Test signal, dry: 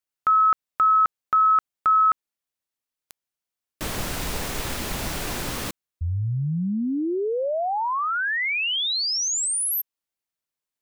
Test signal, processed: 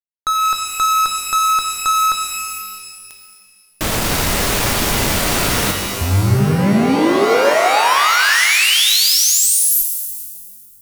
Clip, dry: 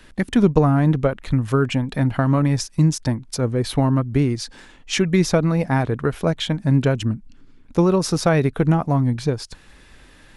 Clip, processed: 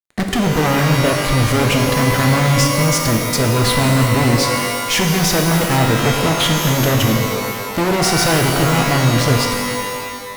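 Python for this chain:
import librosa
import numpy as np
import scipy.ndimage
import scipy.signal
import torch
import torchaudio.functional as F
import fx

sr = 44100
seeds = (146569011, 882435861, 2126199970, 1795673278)

y = fx.fuzz(x, sr, gain_db=32.0, gate_db=-37.0)
y = fx.rev_shimmer(y, sr, seeds[0], rt60_s=1.8, semitones=12, shimmer_db=-2, drr_db=3.0)
y = y * 10.0 ** (-2.0 / 20.0)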